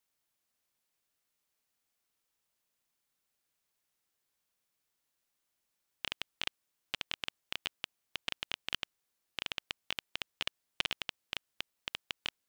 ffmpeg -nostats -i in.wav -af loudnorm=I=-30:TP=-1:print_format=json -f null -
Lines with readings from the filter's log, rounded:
"input_i" : "-40.3",
"input_tp" : "-9.2",
"input_lra" : "2.6",
"input_thresh" : "-50.3",